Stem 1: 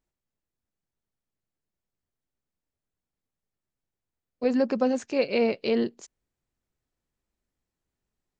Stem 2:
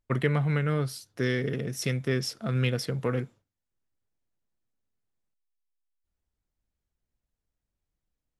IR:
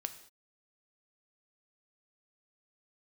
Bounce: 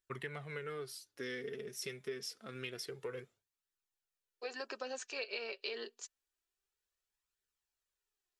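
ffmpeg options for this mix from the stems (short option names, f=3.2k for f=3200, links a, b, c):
-filter_complex "[0:a]highpass=1.4k,bandreject=f=2.1k:w=7.3,volume=3dB[a];[1:a]tiltshelf=f=820:g=-7.5,volume=-11dB[b];[a][b]amix=inputs=2:normalize=0,equalizer=f=400:t=o:w=0.4:g=13.5,flanger=delay=0.5:depth=4.8:regen=35:speed=0.27:shape=triangular,acompressor=threshold=-38dB:ratio=4"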